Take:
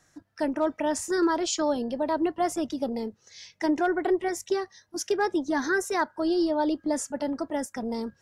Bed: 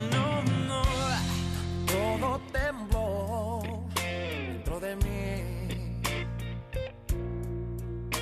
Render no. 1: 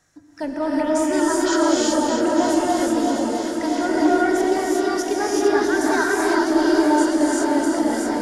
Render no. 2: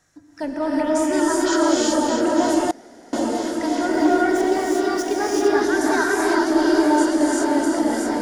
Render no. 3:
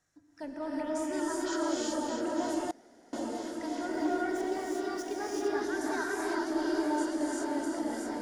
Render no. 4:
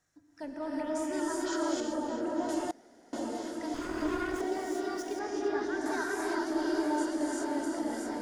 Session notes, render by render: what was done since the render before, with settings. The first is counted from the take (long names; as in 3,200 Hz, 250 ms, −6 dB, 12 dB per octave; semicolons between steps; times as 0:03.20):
feedback delay that plays each chunk backwards 327 ms, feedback 82%, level −7 dB; reverb whose tail is shaped and stops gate 410 ms rising, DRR −5 dB
0:02.71–0:03.13: fill with room tone; 0:03.92–0:05.62: running median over 3 samples
level −13.5 dB
0:01.80–0:02.49: high-shelf EQ 2,200 Hz −9 dB; 0:03.74–0:04.41: lower of the sound and its delayed copy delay 0.61 ms; 0:05.19–0:05.86: high-frequency loss of the air 79 metres